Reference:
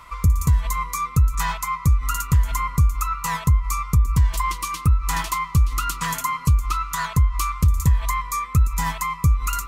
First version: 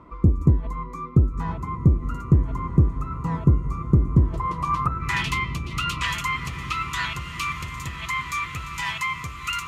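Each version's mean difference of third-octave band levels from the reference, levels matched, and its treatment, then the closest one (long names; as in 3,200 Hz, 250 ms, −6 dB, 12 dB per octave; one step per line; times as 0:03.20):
11.0 dB: low-shelf EQ 400 Hz +11.5 dB
in parallel at −8 dB: soft clipping −14.5 dBFS, distortion −4 dB
on the sum: band-pass filter sweep 320 Hz → 2,700 Hz, 0:04.27–0:05.22
feedback delay with all-pass diffusion 1,439 ms, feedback 56%, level −11.5 dB
level +6 dB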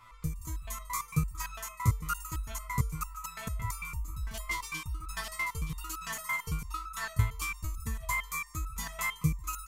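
8.0 dB: automatic gain control gain up to 5 dB
on a send: single-tap delay 147 ms −12.5 dB
on the sum: step-sequenced resonator 8.9 Hz 110–1,300 Hz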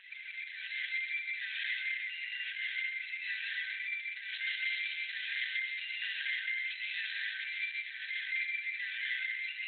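20.5 dB: brick-wall band-pass 1,500–9,300 Hz
downward compressor 16 to 1, threshold −34 dBFS, peak gain reduction 9 dB
dense smooth reverb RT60 2.1 s, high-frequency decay 0.8×, pre-delay 105 ms, DRR −6 dB
level +1 dB
Opus 8 kbit/s 48,000 Hz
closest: second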